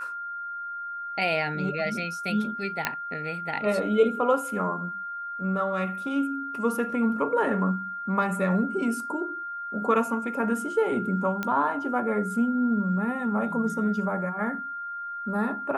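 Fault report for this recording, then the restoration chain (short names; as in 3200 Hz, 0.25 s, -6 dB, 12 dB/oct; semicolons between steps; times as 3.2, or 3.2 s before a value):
tone 1400 Hz -32 dBFS
2.85 pop -9 dBFS
11.43 pop -15 dBFS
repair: de-click; notch 1400 Hz, Q 30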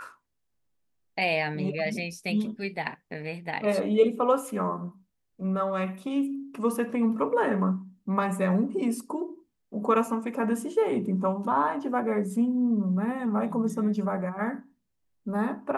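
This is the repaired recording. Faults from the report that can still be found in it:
11.43 pop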